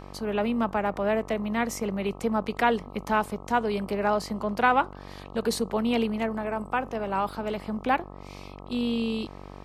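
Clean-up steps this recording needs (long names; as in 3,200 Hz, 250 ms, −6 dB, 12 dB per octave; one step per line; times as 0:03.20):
hum removal 47.9 Hz, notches 27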